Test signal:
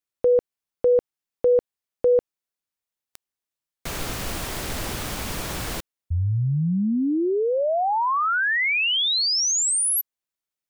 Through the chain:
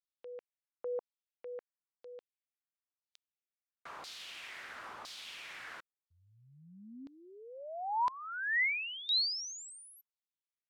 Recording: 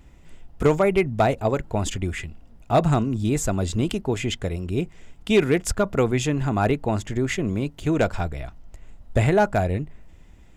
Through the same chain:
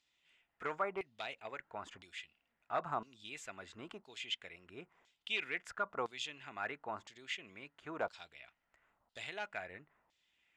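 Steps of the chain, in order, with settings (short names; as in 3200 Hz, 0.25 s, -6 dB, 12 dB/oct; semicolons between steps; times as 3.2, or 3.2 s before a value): LFO band-pass saw down 0.99 Hz 950–4500 Hz; gain -6.5 dB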